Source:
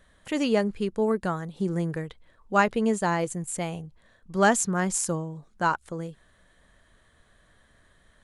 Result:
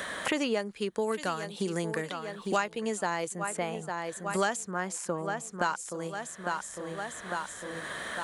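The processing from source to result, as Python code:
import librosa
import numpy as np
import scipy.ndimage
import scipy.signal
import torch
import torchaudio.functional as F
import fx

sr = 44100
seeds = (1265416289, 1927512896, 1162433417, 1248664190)

p1 = fx.highpass(x, sr, hz=540.0, slope=6)
p2 = p1 + fx.echo_feedback(p1, sr, ms=853, feedback_pct=34, wet_db=-15, dry=0)
p3 = fx.band_squash(p2, sr, depth_pct=100)
y = p3 * librosa.db_to_amplitude(-1.5)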